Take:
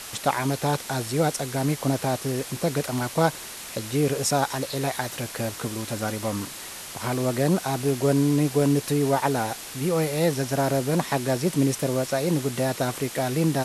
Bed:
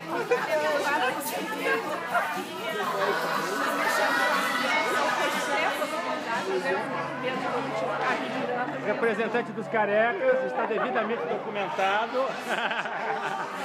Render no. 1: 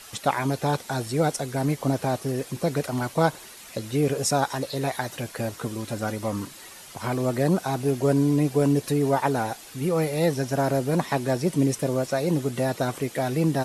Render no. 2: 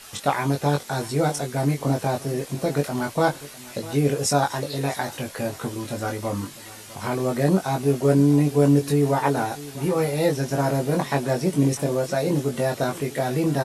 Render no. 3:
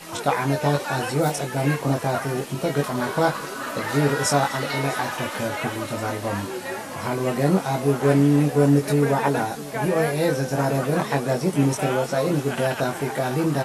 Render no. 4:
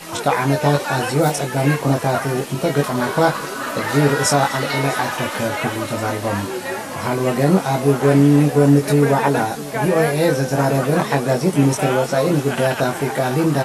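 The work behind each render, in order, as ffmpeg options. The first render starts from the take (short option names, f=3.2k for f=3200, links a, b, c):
-af "afftdn=nr=9:nf=-38"
-filter_complex "[0:a]asplit=2[a][b];[b]adelay=21,volume=-3.5dB[c];[a][c]amix=inputs=2:normalize=0,aecho=1:1:651:0.119"
-filter_complex "[1:a]volume=-4dB[a];[0:a][a]amix=inputs=2:normalize=0"
-af "volume=5dB,alimiter=limit=-3dB:level=0:latency=1"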